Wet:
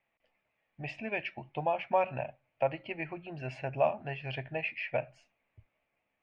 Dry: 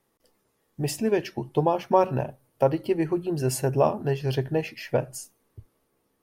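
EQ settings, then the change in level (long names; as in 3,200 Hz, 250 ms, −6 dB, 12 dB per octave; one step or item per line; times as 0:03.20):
transistor ladder low-pass 2,600 Hz, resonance 70%
low shelf with overshoot 520 Hz −7 dB, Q 3
parametric band 1,100 Hz −7.5 dB 1.4 octaves
+6.0 dB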